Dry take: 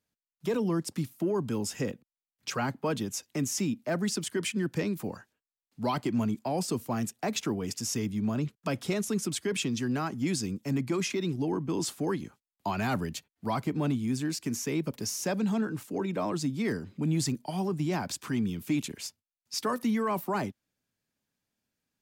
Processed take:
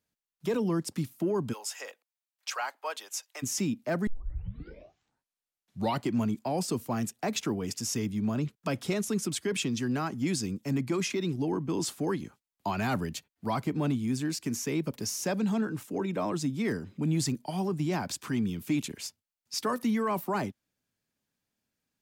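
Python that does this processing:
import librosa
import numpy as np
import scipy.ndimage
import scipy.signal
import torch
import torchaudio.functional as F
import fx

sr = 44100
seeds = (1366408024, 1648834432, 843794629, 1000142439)

y = fx.highpass(x, sr, hz=650.0, slope=24, at=(1.52, 3.42), fade=0.02)
y = fx.notch(y, sr, hz=4500.0, q=12.0, at=(15.81, 17.0))
y = fx.edit(y, sr, fx.tape_start(start_s=4.07, length_s=1.99), tone=tone)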